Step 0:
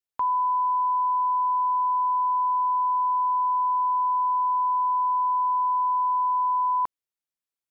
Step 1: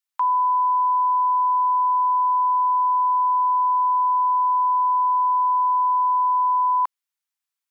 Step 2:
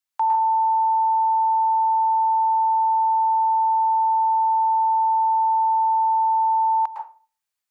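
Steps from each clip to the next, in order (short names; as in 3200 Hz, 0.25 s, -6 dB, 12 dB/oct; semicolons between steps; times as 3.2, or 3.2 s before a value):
HPF 850 Hz 24 dB/oct; gain +5 dB
frequency shift -110 Hz; reverb RT60 0.35 s, pre-delay 0.103 s, DRR 1.5 dB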